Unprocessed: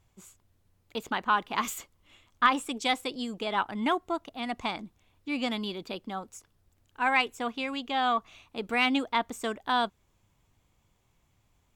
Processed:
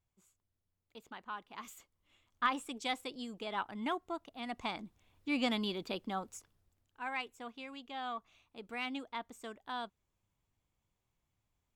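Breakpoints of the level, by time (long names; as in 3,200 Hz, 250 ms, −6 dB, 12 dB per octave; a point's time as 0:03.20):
0:01.58 −18 dB
0:02.46 −9 dB
0:04.30 −9 dB
0:05.29 −2 dB
0:06.34 −2 dB
0:07.01 −14 dB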